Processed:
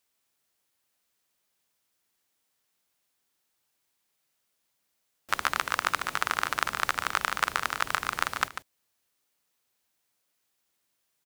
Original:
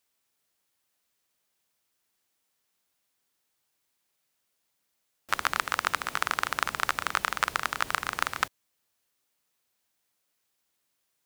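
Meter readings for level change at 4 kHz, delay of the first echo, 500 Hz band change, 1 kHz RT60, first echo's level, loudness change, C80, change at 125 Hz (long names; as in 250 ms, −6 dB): +0.5 dB, 145 ms, +0.5 dB, no reverb audible, −10.5 dB, +0.5 dB, no reverb audible, +0.5 dB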